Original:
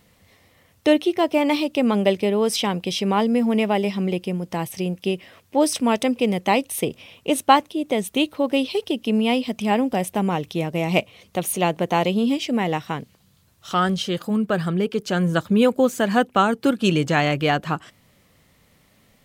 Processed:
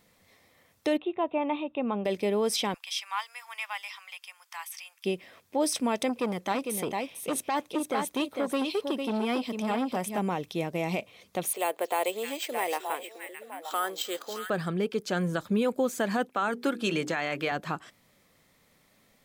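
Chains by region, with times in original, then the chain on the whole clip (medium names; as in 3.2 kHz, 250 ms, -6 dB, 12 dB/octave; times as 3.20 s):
0.97–2.05 s: rippled Chebyshev low-pass 3.8 kHz, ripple 9 dB + tilt EQ -2 dB/octave
2.74–5.05 s: steep high-pass 1 kHz + band-stop 4 kHz, Q 14
6.09–10.18 s: delay 452 ms -7.5 dB + transformer saturation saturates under 1.6 kHz
11.53–14.50 s: high-pass 390 Hz 24 dB/octave + repeats whose band climbs or falls 308 ms, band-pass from 5.8 kHz, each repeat -1.4 oct, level -2.5 dB + careless resampling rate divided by 4×, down filtered, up hold
16.30–17.52 s: high-pass 180 Hz + hum notches 60/120/180/240/300/360/420/480 Hz + dynamic bell 1.7 kHz, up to +5 dB, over -32 dBFS, Q 0.93
whole clip: peaking EQ 68 Hz -9.5 dB 2.5 oct; band-stop 2.9 kHz, Q 12; peak limiter -13.5 dBFS; trim -4.5 dB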